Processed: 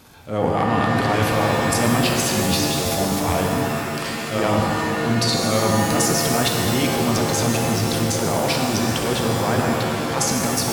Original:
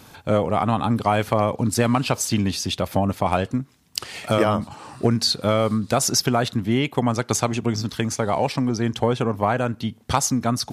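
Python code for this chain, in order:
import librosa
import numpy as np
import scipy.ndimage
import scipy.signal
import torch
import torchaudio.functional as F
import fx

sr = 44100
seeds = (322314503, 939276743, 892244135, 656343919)

y = fx.transient(x, sr, attack_db=-9, sustain_db=11)
y = fx.rev_shimmer(y, sr, seeds[0], rt60_s=2.5, semitones=7, shimmer_db=-2, drr_db=1.0)
y = y * librosa.db_to_amplitude(-3.0)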